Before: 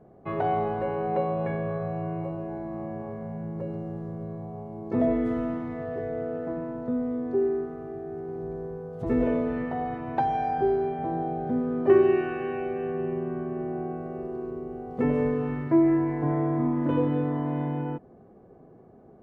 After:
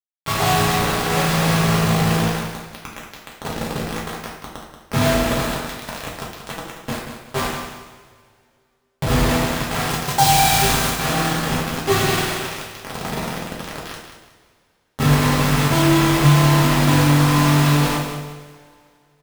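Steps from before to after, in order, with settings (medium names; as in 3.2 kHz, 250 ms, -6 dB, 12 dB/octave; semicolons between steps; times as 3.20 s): graphic EQ 125/250/500/1000/2000 Hz +7/-9/-12/+4/-3 dB; bit crusher 5-bit; 9.89–10.97 s: tone controls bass +1 dB, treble +6 dB; on a send: feedback delay 183 ms, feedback 29%, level -9 dB; on the sum: two-slope reverb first 0.58 s, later 2.4 s, from -18 dB, DRR -4 dB; trim +6.5 dB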